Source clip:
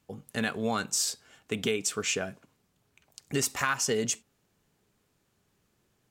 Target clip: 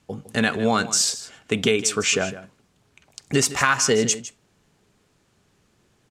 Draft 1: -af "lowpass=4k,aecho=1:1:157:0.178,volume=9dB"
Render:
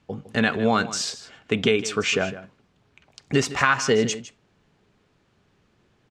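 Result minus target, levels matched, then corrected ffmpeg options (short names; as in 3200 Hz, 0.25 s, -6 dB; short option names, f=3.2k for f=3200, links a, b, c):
8000 Hz band -7.5 dB
-af "lowpass=9.1k,aecho=1:1:157:0.178,volume=9dB"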